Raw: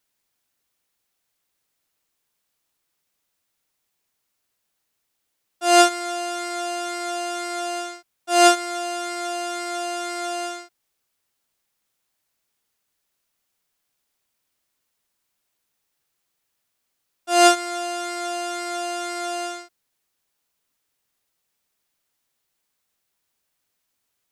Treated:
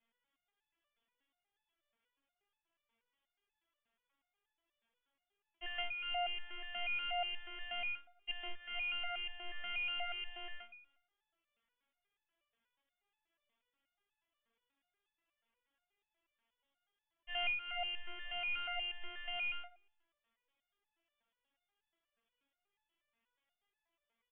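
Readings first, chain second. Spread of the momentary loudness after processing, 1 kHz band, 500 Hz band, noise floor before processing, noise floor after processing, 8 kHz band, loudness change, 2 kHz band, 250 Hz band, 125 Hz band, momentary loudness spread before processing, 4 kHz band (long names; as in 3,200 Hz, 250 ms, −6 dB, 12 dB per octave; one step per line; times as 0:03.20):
9 LU, −23.0 dB, −26.0 dB, −77 dBFS, below −85 dBFS, below −40 dB, −17.0 dB, −10.0 dB, below −35 dB, can't be measured, 14 LU, −13.0 dB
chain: downward compressor 5 to 1, threshold −27 dBFS, peak gain reduction 15.5 dB
on a send: repeating echo 104 ms, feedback 51%, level −21 dB
on the sum: voice inversion scrambler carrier 3,500 Hz
step-sequenced resonator 8.3 Hz 230–860 Hz
level +10 dB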